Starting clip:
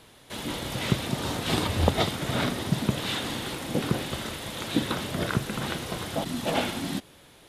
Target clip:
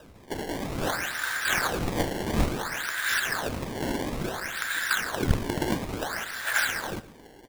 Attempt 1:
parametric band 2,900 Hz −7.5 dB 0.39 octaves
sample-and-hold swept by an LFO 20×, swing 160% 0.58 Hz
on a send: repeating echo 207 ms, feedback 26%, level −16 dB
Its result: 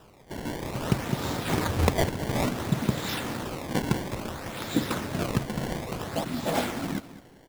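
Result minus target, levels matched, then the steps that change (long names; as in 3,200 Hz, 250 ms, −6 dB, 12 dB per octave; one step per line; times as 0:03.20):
echo 93 ms late; 2,000 Hz band −8.0 dB
add first: high-pass with resonance 1,600 Hz, resonance Q 7.4
change: repeating echo 114 ms, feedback 26%, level −16 dB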